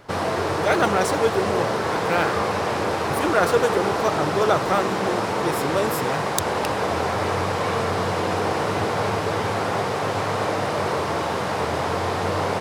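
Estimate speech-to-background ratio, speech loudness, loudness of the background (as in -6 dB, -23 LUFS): -1.5 dB, -25.0 LUFS, -23.5 LUFS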